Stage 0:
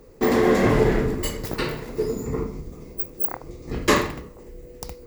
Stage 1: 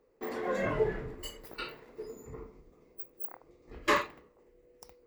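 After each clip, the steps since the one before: spectral noise reduction 11 dB; tone controls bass -12 dB, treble -10 dB; trim -5 dB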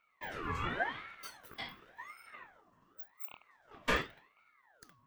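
resonant low shelf 460 Hz -8 dB, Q 1.5; small resonant body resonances 370/2700 Hz, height 11 dB; ring modulator with a swept carrier 1.2 kHz, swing 50%, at 0.9 Hz; trim -2.5 dB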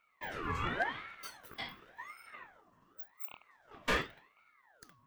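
hard clipper -24 dBFS, distortion -16 dB; trim +1 dB

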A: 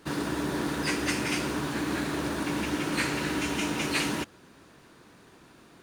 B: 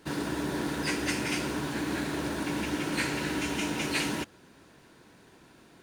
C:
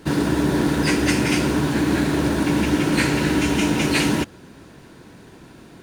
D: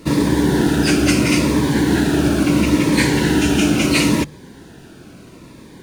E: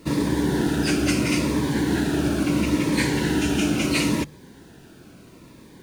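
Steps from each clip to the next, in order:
band-stop 1.2 kHz, Q 9.7; trim -1.5 dB
bass shelf 370 Hz +7.5 dB; trim +8 dB
hum notches 50/100/150 Hz; companded quantiser 8-bit; Shepard-style phaser falling 0.74 Hz; trim +5 dB
bit crusher 9-bit; trim -6.5 dB

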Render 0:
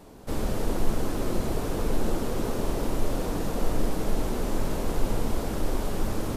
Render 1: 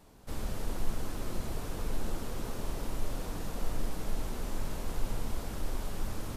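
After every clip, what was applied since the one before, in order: peaking EQ 380 Hz -7 dB 2.3 oct; trim -6 dB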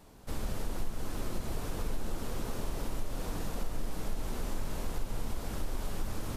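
compression 3:1, threshold -30 dBFS, peak gain reduction 7.5 dB; trim +2 dB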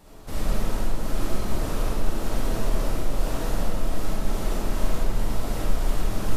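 reverberation RT60 1.1 s, pre-delay 10 ms, DRR -5.5 dB; trim +3 dB

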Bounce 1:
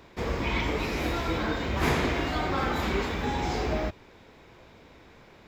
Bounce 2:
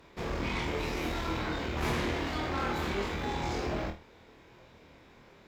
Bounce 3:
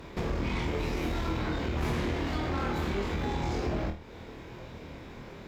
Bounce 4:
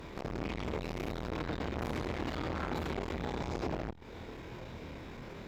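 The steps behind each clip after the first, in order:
valve stage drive 26 dB, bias 0.6; flutter echo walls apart 4.3 m, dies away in 0.28 s; trim -2 dB
bass shelf 390 Hz +7 dB; compression 2.5:1, threshold -41 dBFS, peak gain reduction 12 dB; trim +8 dB
transformer saturation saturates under 660 Hz

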